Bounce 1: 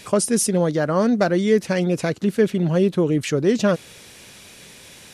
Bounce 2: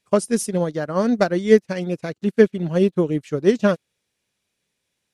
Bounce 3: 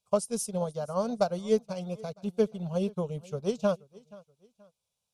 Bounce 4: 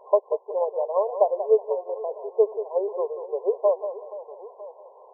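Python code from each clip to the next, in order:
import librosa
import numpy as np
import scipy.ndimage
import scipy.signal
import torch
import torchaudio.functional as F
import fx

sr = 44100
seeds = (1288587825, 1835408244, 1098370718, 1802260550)

y1 = fx.upward_expand(x, sr, threshold_db=-38.0, expansion=2.5)
y1 = y1 * librosa.db_to_amplitude(5.5)
y2 = fx.fixed_phaser(y1, sr, hz=760.0, stages=4)
y2 = fx.echo_feedback(y2, sr, ms=478, feedback_pct=35, wet_db=-22.5)
y2 = y2 * librosa.db_to_amplitude(-5.5)
y3 = y2 + 0.5 * 10.0 ** (-39.0 / 20.0) * np.sign(y2)
y3 = fx.brickwall_bandpass(y3, sr, low_hz=370.0, high_hz=1100.0)
y3 = fx.echo_feedback(y3, sr, ms=185, feedback_pct=23, wet_db=-10.5)
y3 = y3 * librosa.db_to_amplitude(6.5)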